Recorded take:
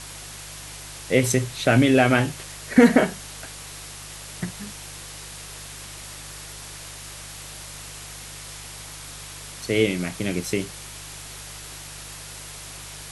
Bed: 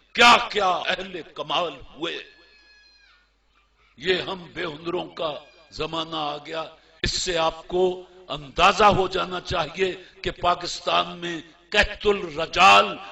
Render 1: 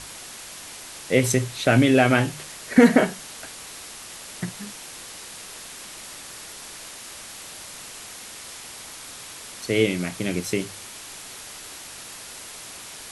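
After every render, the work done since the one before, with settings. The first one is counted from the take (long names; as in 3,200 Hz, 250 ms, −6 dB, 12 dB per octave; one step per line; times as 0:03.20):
hum removal 50 Hz, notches 3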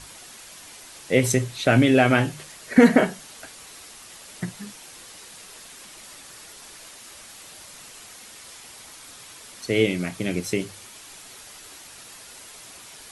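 broadband denoise 6 dB, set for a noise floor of −40 dBFS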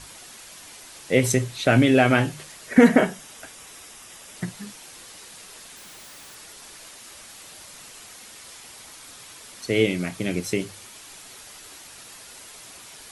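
0:02.68–0:04.37: notch filter 4,300 Hz, Q 7.3
0:05.77–0:06.35: comparator with hysteresis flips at −58 dBFS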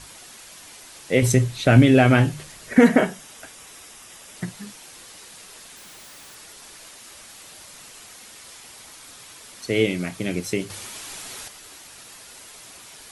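0:01.22–0:02.75: low-shelf EQ 160 Hz +11 dB
0:10.70–0:11.48: clip gain +7 dB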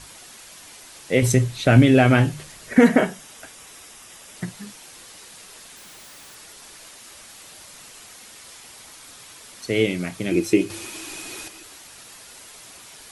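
0:10.31–0:11.63: hollow resonant body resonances 330/2,500 Hz, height 18 dB, ringing for 85 ms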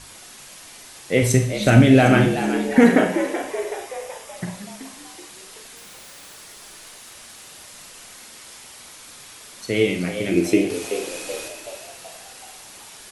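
echo with shifted repeats 378 ms, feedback 52%, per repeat +87 Hz, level −10 dB
four-comb reverb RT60 0.5 s, combs from 30 ms, DRR 6 dB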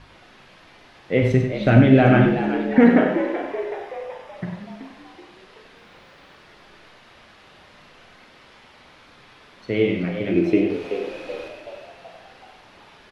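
high-frequency loss of the air 330 metres
on a send: single-tap delay 96 ms −8 dB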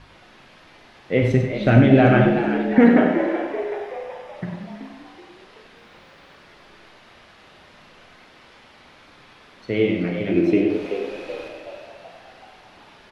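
echo through a band-pass that steps 110 ms, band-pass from 260 Hz, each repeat 1.4 octaves, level −5 dB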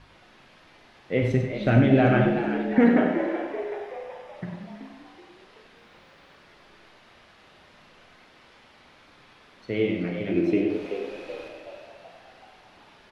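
level −5 dB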